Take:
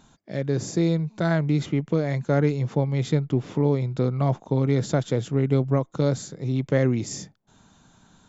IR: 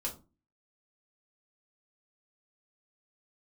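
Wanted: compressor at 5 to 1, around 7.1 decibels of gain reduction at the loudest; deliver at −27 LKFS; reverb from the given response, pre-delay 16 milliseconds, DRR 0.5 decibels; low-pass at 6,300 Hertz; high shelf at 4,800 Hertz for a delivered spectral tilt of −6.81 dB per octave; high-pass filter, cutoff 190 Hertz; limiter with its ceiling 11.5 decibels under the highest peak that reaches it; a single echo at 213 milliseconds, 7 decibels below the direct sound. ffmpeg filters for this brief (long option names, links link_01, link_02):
-filter_complex "[0:a]highpass=190,lowpass=6300,highshelf=frequency=4800:gain=-9,acompressor=threshold=-26dB:ratio=5,alimiter=level_in=2dB:limit=-24dB:level=0:latency=1,volume=-2dB,aecho=1:1:213:0.447,asplit=2[link_01][link_02];[1:a]atrim=start_sample=2205,adelay=16[link_03];[link_02][link_03]afir=irnorm=-1:irlink=0,volume=-2dB[link_04];[link_01][link_04]amix=inputs=2:normalize=0,volume=6dB"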